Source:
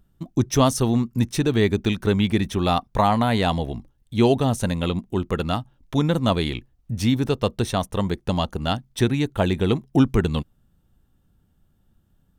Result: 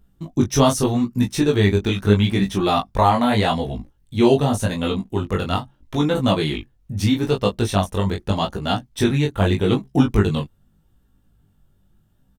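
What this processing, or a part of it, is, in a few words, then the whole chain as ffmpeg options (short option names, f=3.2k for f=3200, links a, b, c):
double-tracked vocal: -filter_complex "[0:a]asplit=2[a][b];[b]adelay=20,volume=-4dB[c];[a][c]amix=inputs=2:normalize=0,flanger=delay=15.5:depth=6.7:speed=0.81,volume=4dB"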